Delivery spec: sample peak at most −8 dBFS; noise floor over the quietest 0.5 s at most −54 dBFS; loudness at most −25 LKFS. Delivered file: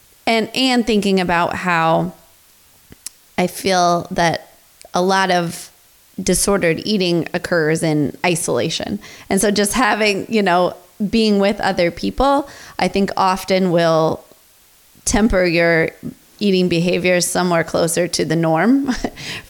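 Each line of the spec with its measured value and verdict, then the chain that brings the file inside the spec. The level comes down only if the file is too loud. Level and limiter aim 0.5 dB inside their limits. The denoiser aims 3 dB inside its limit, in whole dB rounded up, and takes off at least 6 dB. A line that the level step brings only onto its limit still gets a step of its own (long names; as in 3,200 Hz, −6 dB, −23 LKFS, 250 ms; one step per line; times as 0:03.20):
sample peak −4.5 dBFS: out of spec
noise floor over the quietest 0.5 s −51 dBFS: out of spec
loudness −17.0 LKFS: out of spec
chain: level −8.5 dB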